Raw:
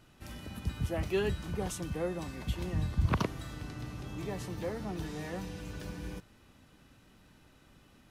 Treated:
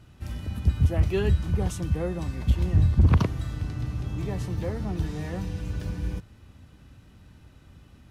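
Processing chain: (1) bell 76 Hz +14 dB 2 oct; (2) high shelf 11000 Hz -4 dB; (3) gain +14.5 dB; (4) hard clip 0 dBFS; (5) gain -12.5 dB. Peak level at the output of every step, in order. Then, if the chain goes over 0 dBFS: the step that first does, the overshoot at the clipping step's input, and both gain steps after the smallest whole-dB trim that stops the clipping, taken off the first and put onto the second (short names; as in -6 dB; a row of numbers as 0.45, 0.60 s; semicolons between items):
-6.0, -6.0, +8.5, 0.0, -12.5 dBFS; step 3, 8.5 dB; step 3 +5.5 dB, step 5 -3.5 dB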